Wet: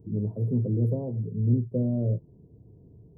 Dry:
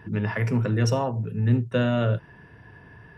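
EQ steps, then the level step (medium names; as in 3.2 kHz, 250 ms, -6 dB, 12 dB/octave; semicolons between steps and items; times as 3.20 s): inverse Chebyshev band-stop 1.9–5.2 kHz, stop band 80 dB; -2.0 dB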